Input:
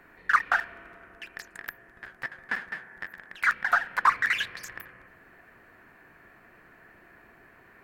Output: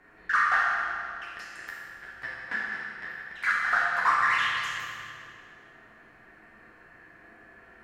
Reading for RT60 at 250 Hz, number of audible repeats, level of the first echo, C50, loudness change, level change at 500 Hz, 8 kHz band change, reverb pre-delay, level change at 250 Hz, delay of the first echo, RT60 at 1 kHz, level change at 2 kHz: 2.2 s, no echo, no echo, -1.5 dB, 0.0 dB, +1.0 dB, 0.0 dB, 6 ms, +0.5 dB, no echo, 2.2 s, +1.5 dB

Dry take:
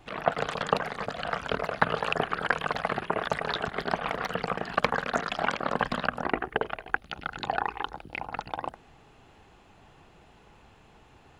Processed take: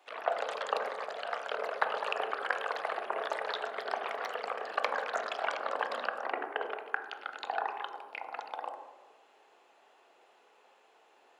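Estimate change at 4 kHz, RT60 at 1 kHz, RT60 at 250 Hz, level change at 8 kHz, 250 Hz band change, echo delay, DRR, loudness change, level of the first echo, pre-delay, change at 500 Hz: -6.0 dB, 1.0 s, 1.4 s, -6.0 dB, -17.5 dB, no echo, 4.5 dB, -5.0 dB, no echo, 15 ms, -4.5 dB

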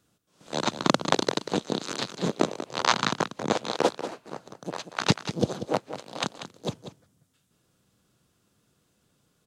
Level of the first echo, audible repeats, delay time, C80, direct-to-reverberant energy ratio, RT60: -11.0 dB, 1, 189 ms, no reverb, no reverb, no reverb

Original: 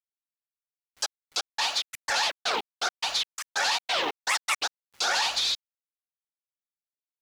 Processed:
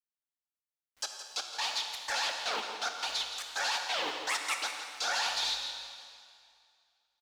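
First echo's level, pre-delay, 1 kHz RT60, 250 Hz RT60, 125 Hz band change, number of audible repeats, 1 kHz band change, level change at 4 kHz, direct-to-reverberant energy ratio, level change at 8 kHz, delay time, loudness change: -11.5 dB, 6 ms, 2.3 s, 2.3 s, no reading, 1, -5.5 dB, -5.5 dB, 3.0 dB, -5.5 dB, 169 ms, -5.5 dB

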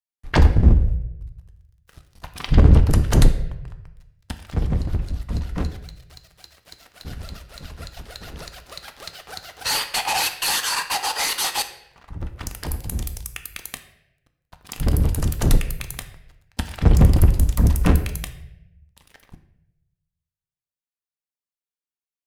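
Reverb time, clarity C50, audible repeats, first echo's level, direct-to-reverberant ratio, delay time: 0.85 s, 11.0 dB, no echo, no echo, 7.0 dB, no echo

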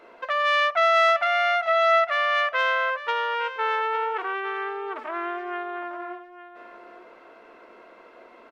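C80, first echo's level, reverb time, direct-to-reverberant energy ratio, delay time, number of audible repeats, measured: no reverb, -13.5 dB, no reverb, no reverb, 856 ms, 1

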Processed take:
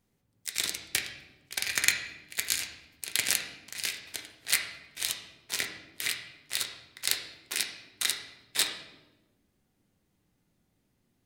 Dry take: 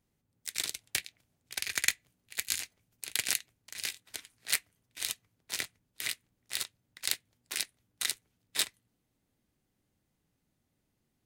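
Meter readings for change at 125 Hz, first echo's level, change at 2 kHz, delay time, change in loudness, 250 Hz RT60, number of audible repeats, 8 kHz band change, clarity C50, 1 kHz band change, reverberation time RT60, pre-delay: +5.5 dB, no echo, +4.5 dB, no echo, +3.5 dB, 1.6 s, no echo, +3.0 dB, 6.5 dB, +5.0 dB, 1.1 s, 4 ms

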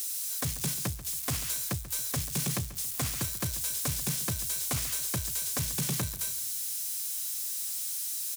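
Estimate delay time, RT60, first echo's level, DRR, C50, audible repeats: 138 ms, no reverb, -15.5 dB, no reverb, no reverb, 3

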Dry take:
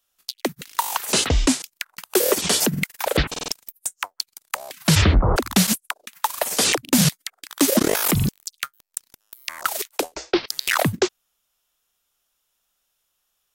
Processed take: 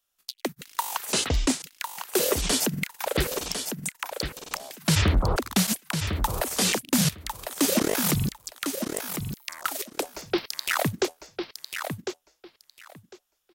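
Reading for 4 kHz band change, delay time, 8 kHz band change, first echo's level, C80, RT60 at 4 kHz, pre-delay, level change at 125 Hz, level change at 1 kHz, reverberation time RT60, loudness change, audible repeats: -4.5 dB, 1052 ms, -4.5 dB, -7.0 dB, no reverb, no reverb, no reverb, -4.5 dB, -4.5 dB, no reverb, -5.5 dB, 2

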